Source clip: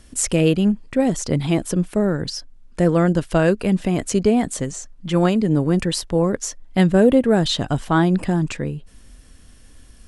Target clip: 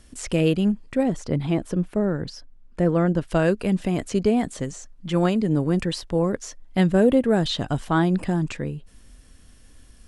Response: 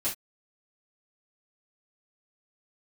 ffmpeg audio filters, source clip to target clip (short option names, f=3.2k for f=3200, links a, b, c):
-filter_complex "[0:a]asettb=1/sr,asplit=3[a][b][c];[a]atrim=end=1.034[d];[b]atrim=start=1.03:end=3.28,asetpts=PTS-STARTPTS,afade=t=in:d=0.004:c=qsin,afade=t=out:st=2.246:d=0.004:c=qsin,highshelf=f=3.7k:g=-11.5[e];[c]atrim=start=3.276[f];[d][e]acrossfade=d=0.004:c1=hsin:c2=qsin[g];[g][f]acrossfade=d=0.004:c1=qsin:c2=hsin,acrossover=split=5100[h][i];[i]acompressor=threshold=-36dB:ratio=4:attack=1:release=60[j];[h][j]amix=inputs=2:normalize=0,volume=-3.5dB"